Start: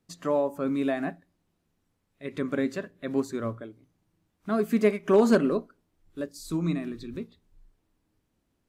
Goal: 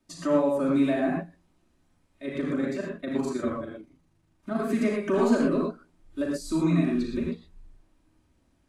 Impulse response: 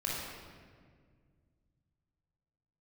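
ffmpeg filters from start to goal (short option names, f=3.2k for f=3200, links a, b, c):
-filter_complex "[0:a]acrossover=split=490|1100[a][b][c];[a]acompressor=threshold=-29dB:ratio=4[d];[b]acompressor=threshold=-39dB:ratio=4[e];[c]acompressor=threshold=-44dB:ratio=4[f];[d][e][f]amix=inputs=3:normalize=0,asplit=3[g][h][i];[g]afade=t=out:st=2.25:d=0.02[j];[h]tremolo=f=25:d=0.621,afade=t=in:st=2.25:d=0.02,afade=t=out:st=4.6:d=0.02[k];[i]afade=t=in:st=4.6:d=0.02[l];[j][k][l]amix=inputs=3:normalize=0[m];[1:a]atrim=start_sample=2205,atrim=end_sample=3087,asetrate=22932,aresample=44100[n];[m][n]afir=irnorm=-1:irlink=0"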